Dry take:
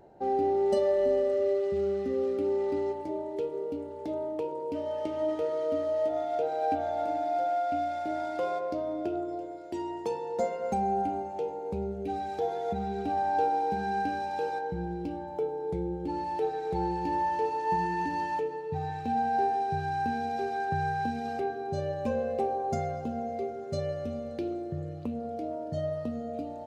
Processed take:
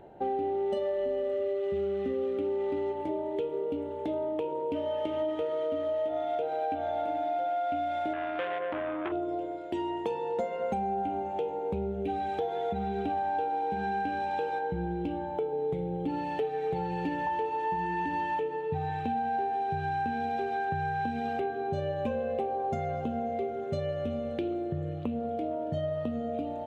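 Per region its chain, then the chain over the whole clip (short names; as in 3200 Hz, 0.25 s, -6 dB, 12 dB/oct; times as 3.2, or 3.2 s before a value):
8.13–9.12 air absorption 230 m + core saturation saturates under 1300 Hz
15.52–17.27 comb 7.3 ms, depth 72% + flutter echo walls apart 10.6 m, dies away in 0.25 s
whole clip: resonant high shelf 4000 Hz -6.5 dB, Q 3; compressor, threshold -32 dBFS; gain +4 dB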